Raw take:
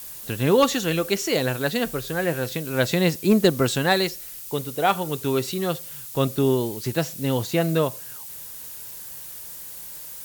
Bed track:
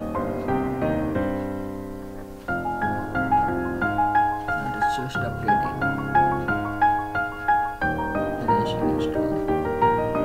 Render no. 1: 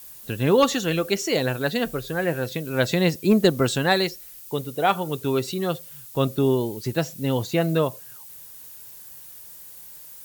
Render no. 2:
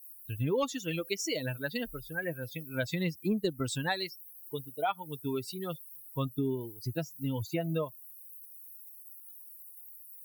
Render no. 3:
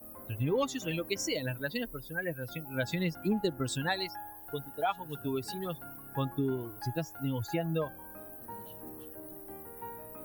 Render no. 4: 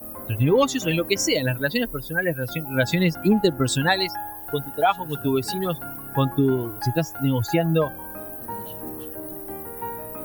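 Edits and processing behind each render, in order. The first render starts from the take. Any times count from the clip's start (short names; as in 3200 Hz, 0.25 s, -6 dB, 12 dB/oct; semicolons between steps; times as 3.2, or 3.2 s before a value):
denoiser 7 dB, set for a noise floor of -38 dBFS
per-bin expansion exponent 2; compressor 3:1, threshold -30 dBFS, peak gain reduction 11.5 dB
add bed track -25 dB
gain +11.5 dB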